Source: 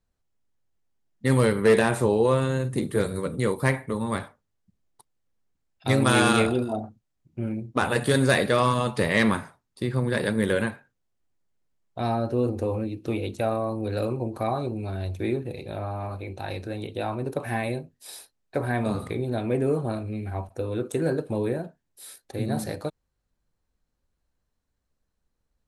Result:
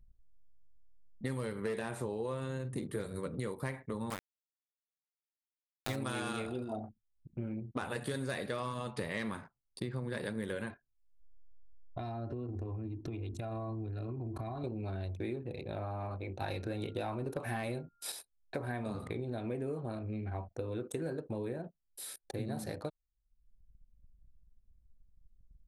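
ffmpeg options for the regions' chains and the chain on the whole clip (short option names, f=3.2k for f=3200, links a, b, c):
-filter_complex "[0:a]asettb=1/sr,asplit=3[a][b][c];[a]atrim=end=4.104[d];[b]atrim=start=4.1:end=5.96,asetpts=PTS-STARTPTS,afade=t=in:d=0.004:c=qsin,afade=t=out:st=1.856:d=0.004:c=qsin,bandreject=f=50:t=h:w=6,bandreject=f=100:t=h:w=6,bandreject=f=150:t=h:w=6,bandreject=f=200:t=h:w=6,bandreject=f=250:t=h:w=6,bandreject=f=300:t=h:w=6,bandreject=f=350:t=h:w=6,bandreject=f=400:t=h:w=6,bandreject=f=450:t=h:w=6,bandreject=f=500:t=h:w=6,aeval=exprs='val(0)*gte(abs(val(0)),0.0668)':c=same[e];[c]atrim=start=5.956[f];[d][e]acrossfade=d=0.004:c1=hsin:c2=qsin[g];[g][f]acrossfade=d=0.004:c1=qsin:c2=hsin,asettb=1/sr,asplit=3[h][i][j];[h]atrim=end=10.704[k];[i]atrim=start=10.7:end=14.64,asetpts=PTS-STARTPTS,afade=t=in:d=0.004:c=qsin,afade=t=out:st=3.936:d=0.004:c=qsin,asubboost=boost=4.5:cutoff=210,aecho=1:1:2.9:0.65,atrim=end_sample=173754,acompressor=threshold=-30dB:ratio=16:attack=3.2:release=140:knee=1:detection=peak[l];[j]atrim=start=14.636[m];[k][l]acrossfade=d=0.004:c1=hsin:c2=qsin[n];[n][m]acrossfade=d=0.004:c1=qsin:c2=hsin,asettb=1/sr,asplit=3[o][p][q];[o]atrim=end=16.414[r];[p]atrim=start=16.41:end=18.12,asetpts=PTS-STARTPTS,afade=t=in:d=0.004:c=qsin,afade=t=out:st=1.706:d=0.004:c=qsin,aeval=exprs='val(0)+0.000891*sin(2*PI*1400*n/s)':c=same,aeval=exprs='0.211*sin(PI/2*1.41*val(0)/0.211)':c=same[s];[q]atrim=start=18.116[t];[r][s]acrossfade=d=0.004:c1=hsin:c2=qsin[u];[u][t]acrossfade=d=0.004:c1=qsin:c2=hsin,acompressor=mode=upward:threshold=-34dB:ratio=2.5,anlmdn=0.1,acompressor=threshold=-30dB:ratio=6,volume=-4.5dB"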